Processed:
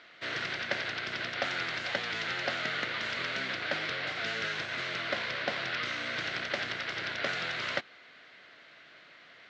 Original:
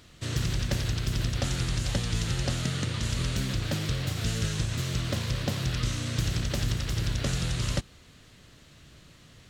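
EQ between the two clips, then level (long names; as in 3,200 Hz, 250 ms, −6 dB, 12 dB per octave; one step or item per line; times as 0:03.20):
loudspeaker in its box 440–4,400 Hz, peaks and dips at 680 Hz +6 dB, 1,500 Hz +9 dB, 2,100 Hz +9 dB
0.0 dB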